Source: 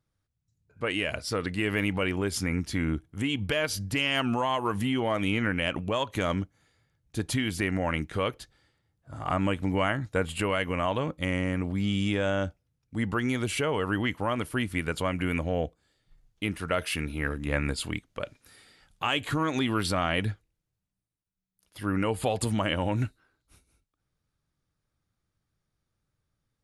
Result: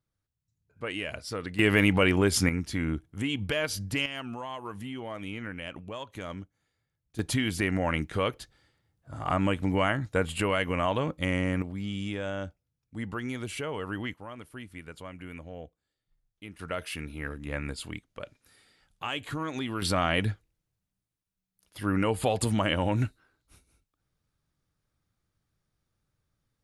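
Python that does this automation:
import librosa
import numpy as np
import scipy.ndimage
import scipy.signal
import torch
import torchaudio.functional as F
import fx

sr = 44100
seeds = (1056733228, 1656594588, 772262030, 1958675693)

y = fx.gain(x, sr, db=fx.steps((0.0, -5.0), (1.59, 5.5), (2.49, -1.5), (4.06, -10.5), (7.19, 0.5), (11.62, -6.5), (14.14, -14.0), (16.59, -6.0), (19.82, 1.0)))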